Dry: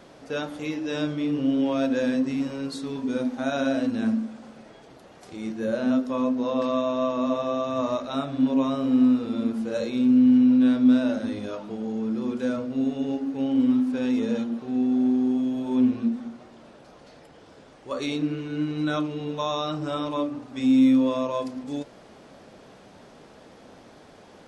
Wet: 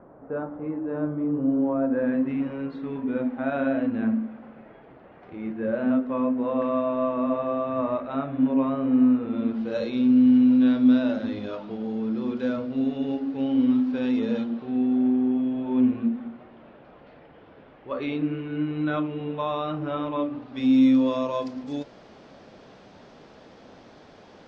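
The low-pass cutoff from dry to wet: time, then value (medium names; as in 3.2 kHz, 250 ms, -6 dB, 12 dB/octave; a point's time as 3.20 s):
low-pass 24 dB/octave
1.83 s 1.3 kHz
2.28 s 2.4 kHz
9.25 s 2.4 kHz
9.72 s 4.5 kHz
14.37 s 4.5 kHz
15.16 s 2.9 kHz
20.11 s 2.9 kHz
20.86 s 5.9 kHz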